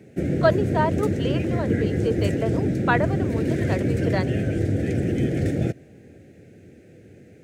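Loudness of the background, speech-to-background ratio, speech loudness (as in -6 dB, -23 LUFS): -24.0 LUFS, -3.5 dB, -27.5 LUFS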